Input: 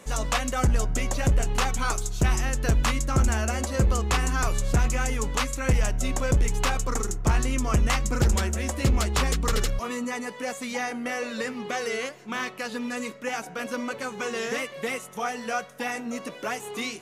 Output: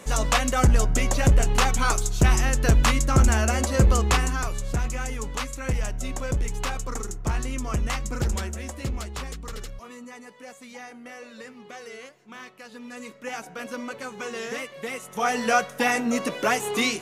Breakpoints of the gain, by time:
4.09 s +4 dB
4.49 s -4 dB
8.37 s -4 dB
9.42 s -11.5 dB
12.67 s -11.5 dB
13.32 s -3 dB
14.92 s -3 dB
15.36 s +8 dB

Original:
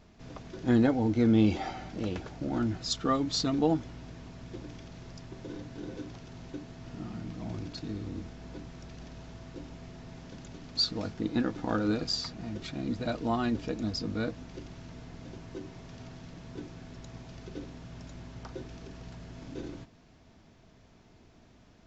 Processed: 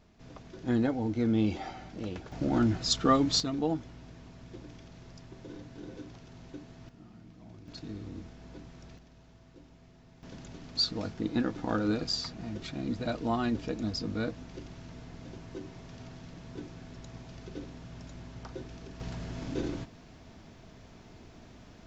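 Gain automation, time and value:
-4 dB
from 2.32 s +4 dB
from 3.4 s -4 dB
from 6.89 s -13 dB
from 7.68 s -4 dB
from 8.98 s -11 dB
from 10.23 s -0.5 dB
from 19 s +6.5 dB

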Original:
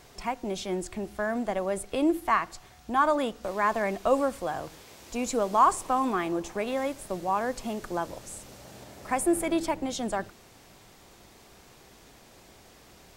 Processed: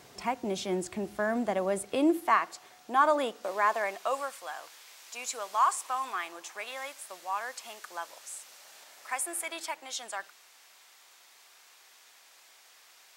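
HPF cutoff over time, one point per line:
1.75 s 110 Hz
2.45 s 360 Hz
3.36 s 360 Hz
4.35 s 1200 Hz

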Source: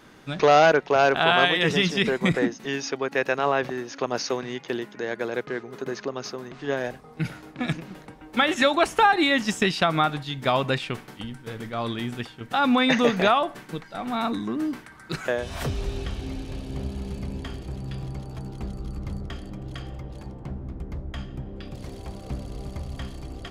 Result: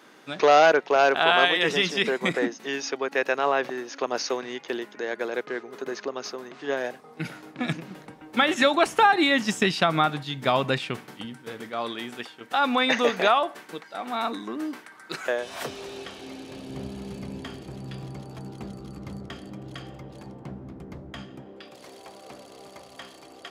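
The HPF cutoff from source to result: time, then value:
6.89 s 290 Hz
7.89 s 120 Hz
10.91 s 120 Hz
11.93 s 350 Hz
16.29 s 350 Hz
16.8 s 150 Hz
21.13 s 150 Hz
21.7 s 480 Hz

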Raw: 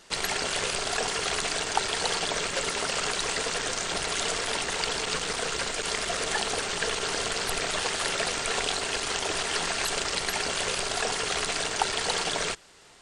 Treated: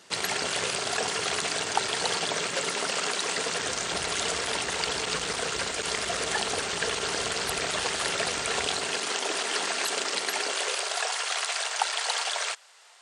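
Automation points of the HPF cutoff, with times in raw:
HPF 24 dB/oct
2.16 s 88 Hz
3.21 s 190 Hz
3.75 s 52 Hz
8.63 s 52 Hz
9.14 s 220 Hz
10.2 s 220 Hz
11.13 s 620 Hz

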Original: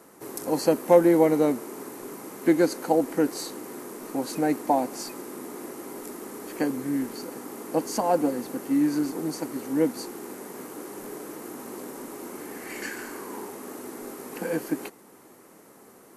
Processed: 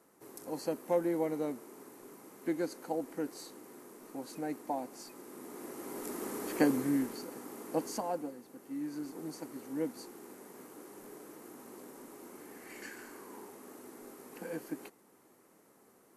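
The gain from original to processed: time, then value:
5.08 s -13.5 dB
6.24 s -0.5 dB
6.75 s -0.5 dB
7.26 s -7.5 dB
7.87 s -7.5 dB
8.42 s -20 dB
9.25 s -12 dB

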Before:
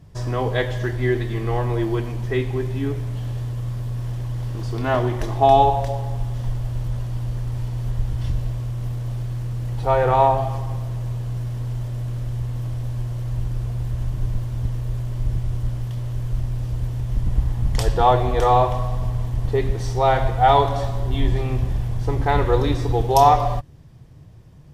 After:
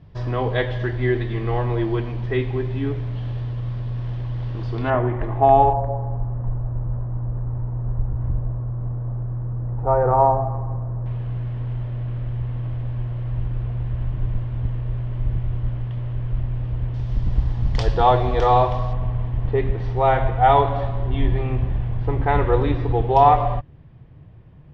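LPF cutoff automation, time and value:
LPF 24 dB/oct
4000 Hz
from 4.9 s 2200 Hz
from 5.73 s 1300 Hz
from 11.06 s 3000 Hz
from 16.94 s 5000 Hz
from 18.93 s 3000 Hz

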